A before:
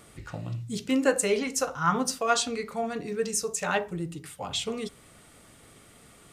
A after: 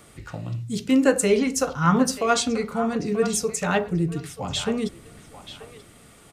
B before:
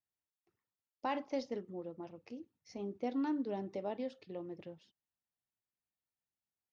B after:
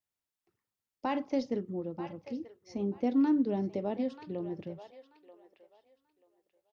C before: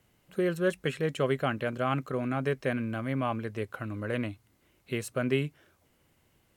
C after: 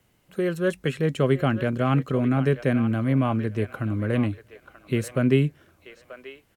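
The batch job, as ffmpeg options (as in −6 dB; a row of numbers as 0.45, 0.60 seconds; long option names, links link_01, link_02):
-filter_complex "[0:a]acrossover=split=350|5800[link_01][link_02][link_03];[link_01]dynaudnorm=framelen=210:gausssize=9:maxgain=8.5dB[link_04];[link_02]aecho=1:1:935|1870|2805:0.266|0.0532|0.0106[link_05];[link_04][link_05][link_03]amix=inputs=3:normalize=0,volume=2.5dB"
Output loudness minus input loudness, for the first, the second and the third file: +5.5, +7.5, +7.0 LU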